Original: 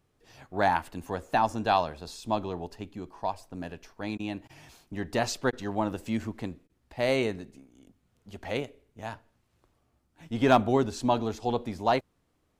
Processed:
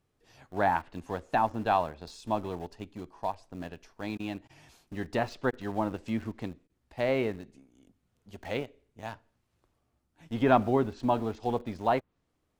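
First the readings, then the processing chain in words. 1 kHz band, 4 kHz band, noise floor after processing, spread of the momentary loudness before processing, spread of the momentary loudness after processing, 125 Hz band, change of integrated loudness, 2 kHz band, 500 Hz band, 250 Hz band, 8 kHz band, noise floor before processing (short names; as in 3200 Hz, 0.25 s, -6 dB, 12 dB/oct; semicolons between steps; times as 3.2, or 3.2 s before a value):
-1.5 dB, -7.0 dB, -77 dBFS, 15 LU, 16 LU, -1.5 dB, -1.5 dB, -2.5 dB, -1.5 dB, -1.5 dB, under -10 dB, -73 dBFS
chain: treble ducked by the level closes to 2400 Hz, closed at -24.5 dBFS; in parallel at -7.5 dB: sample gate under -36 dBFS; on the sum: gain -4.5 dB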